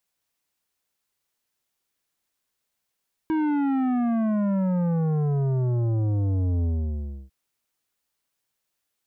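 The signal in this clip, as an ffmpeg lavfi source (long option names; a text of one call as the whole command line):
ffmpeg -f lavfi -i "aevalsrc='0.0794*clip((4-t)/0.66,0,1)*tanh(3.55*sin(2*PI*320*4/log(65/320)*(exp(log(65/320)*t/4)-1)))/tanh(3.55)':duration=4:sample_rate=44100" out.wav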